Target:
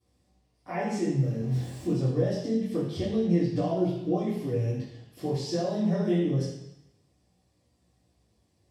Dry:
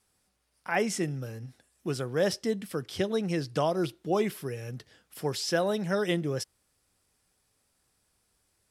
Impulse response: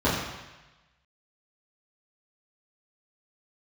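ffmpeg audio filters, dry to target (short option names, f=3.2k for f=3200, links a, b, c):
-filter_complex "[0:a]asettb=1/sr,asplit=3[a][b][c];[a]atrim=end=1.404[d];[b]atrim=start=1.4:end=1.92,asetpts=PTS-STARTPTS,afade=t=in:d=0.004:c=qsin,afade=t=out:st=0.516:d=0.004:c=qsin,aeval=exprs='val(0)+0.5*0.01*sgn(val(0))':c=same[e];[c]atrim=start=1.916[f];[d][e]acrossfade=d=0.004:c1=hsin:c2=qsin[g];[g][f]acrossfade=d=0.004:c1=qsin:c2=hsin,equalizer=f=1.4k:w=2.5:g=-15,acompressor=threshold=-33dB:ratio=5,flanger=delay=16.5:depth=6.9:speed=0.26[h];[1:a]atrim=start_sample=2205,asetrate=52920,aresample=44100[i];[h][i]afir=irnorm=-1:irlink=0,volume=-8dB"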